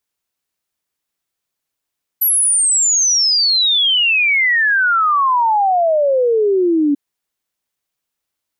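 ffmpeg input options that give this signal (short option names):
-f lavfi -i "aevalsrc='0.282*clip(min(t,4.74-t)/0.01,0,1)*sin(2*PI*12000*4.74/log(280/12000)*(exp(log(280/12000)*t/4.74)-1))':d=4.74:s=44100"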